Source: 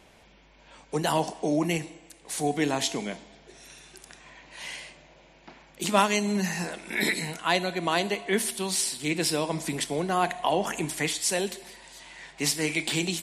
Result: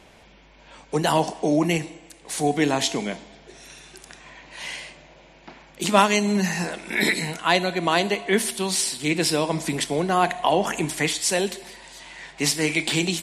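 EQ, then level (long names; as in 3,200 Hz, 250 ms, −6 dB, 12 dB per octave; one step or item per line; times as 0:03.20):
high-shelf EQ 11,000 Hz −6.5 dB
+5.0 dB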